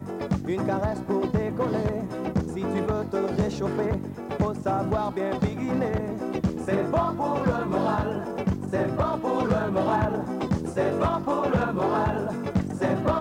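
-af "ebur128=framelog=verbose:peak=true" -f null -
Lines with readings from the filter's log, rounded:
Integrated loudness:
  I:         -26.5 LUFS
  Threshold: -36.5 LUFS
Loudness range:
  LRA:         2.0 LU
  Threshold: -46.5 LUFS
  LRA low:   -27.4 LUFS
  LRA high:  -25.4 LUFS
True peak:
  Peak:      -15.4 dBFS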